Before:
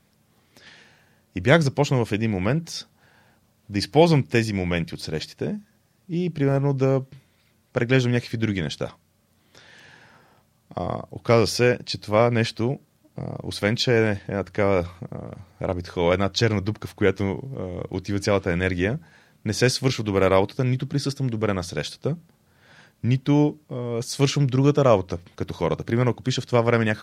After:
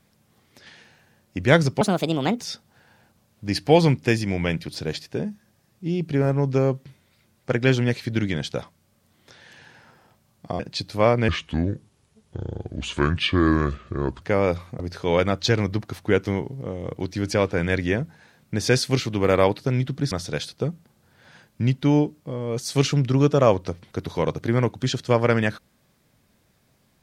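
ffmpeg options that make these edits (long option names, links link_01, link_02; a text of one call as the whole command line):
ffmpeg -i in.wav -filter_complex "[0:a]asplit=8[link_01][link_02][link_03][link_04][link_05][link_06][link_07][link_08];[link_01]atrim=end=1.814[link_09];[link_02]atrim=start=1.81:end=2.67,asetpts=PTS-STARTPTS,asetrate=63945,aresample=44100[link_10];[link_03]atrim=start=2.666:end=10.862[link_11];[link_04]atrim=start=11.728:end=12.424[link_12];[link_05]atrim=start=12.42:end=14.5,asetpts=PTS-STARTPTS,asetrate=31311,aresample=44100,atrim=end_sample=129194,asetpts=PTS-STARTPTS[link_13];[link_06]atrim=start=14.496:end=15.082[link_14];[link_07]atrim=start=15.718:end=21.042[link_15];[link_08]atrim=start=21.548[link_16];[link_09][link_10]acrossfade=duration=0.004:curve1=hsin:curve2=hsin[link_17];[link_17][link_11]acrossfade=duration=0.004:curve1=hsin:curve2=hsin[link_18];[link_18][link_12]acrossfade=duration=0.004:curve1=hsin:curve2=hsin[link_19];[link_19][link_13]acrossfade=duration=0.004:curve1=hsin:curve2=hsin[link_20];[link_20][link_14]acrossfade=duration=0.004:curve1=hsin:curve2=hsin[link_21];[link_21][link_15]acrossfade=duration=0.004:curve1=hsin:curve2=hsin[link_22];[link_22][link_16]acrossfade=duration=0.004:curve1=hsin:curve2=hsin" out.wav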